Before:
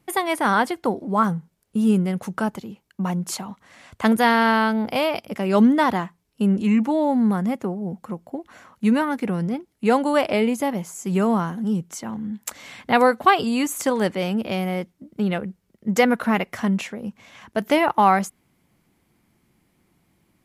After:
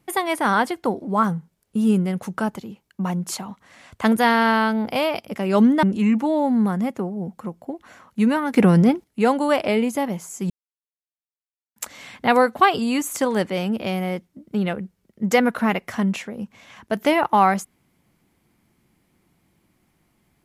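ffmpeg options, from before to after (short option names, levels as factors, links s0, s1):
-filter_complex "[0:a]asplit=6[s0][s1][s2][s3][s4][s5];[s0]atrim=end=5.832[s6];[s1]atrim=start=6.478:end=9.192[s7];[s2]atrim=start=9.188:end=9.692,asetpts=PTS-STARTPTS,volume=3.16[s8];[s3]atrim=start=9.688:end=11.15,asetpts=PTS-STARTPTS,afade=t=out:st=1.458:d=0.004:c=hsin[s9];[s4]atrim=start=11.15:end=12.41,asetpts=PTS-STARTPTS,volume=0[s10];[s5]atrim=start=12.41,asetpts=PTS-STARTPTS,afade=t=in:d=0.004:c=hsin[s11];[s6][s7]acrossfade=d=0.004:c1=hsin:c2=hsin[s12];[s12][s8]acrossfade=d=0.004:c1=hsin:c2=hsin[s13];[s9][s10][s11]concat=n=3:v=0:a=1[s14];[s13][s14]acrossfade=d=0.004:c1=hsin:c2=hsin"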